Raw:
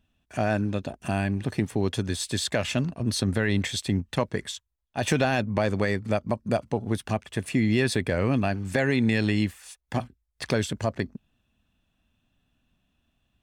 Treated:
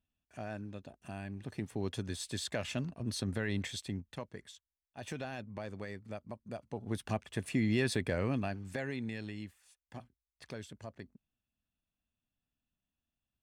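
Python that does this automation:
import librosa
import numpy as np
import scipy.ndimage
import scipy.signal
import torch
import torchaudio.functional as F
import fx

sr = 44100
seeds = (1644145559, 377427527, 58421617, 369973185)

y = fx.gain(x, sr, db=fx.line((1.2, -17.0), (1.86, -10.5), (3.71, -10.5), (4.26, -18.0), (6.57, -18.0), (7.01, -7.5), (8.12, -7.5), (9.36, -19.5)))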